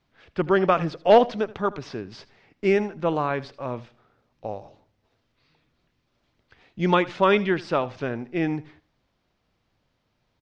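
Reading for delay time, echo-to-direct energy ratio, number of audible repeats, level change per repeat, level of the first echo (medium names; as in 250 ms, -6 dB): 79 ms, -19.0 dB, 2, -14.0 dB, -19.0 dB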